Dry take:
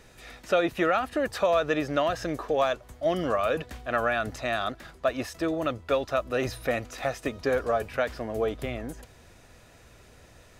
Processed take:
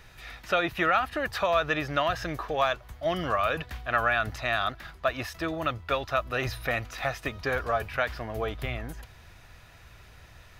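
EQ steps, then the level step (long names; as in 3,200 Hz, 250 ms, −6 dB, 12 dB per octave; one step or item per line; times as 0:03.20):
octave-band graphic EQ 250/500/8,000 Hz −9/−9/−10 dB
+4.5 dB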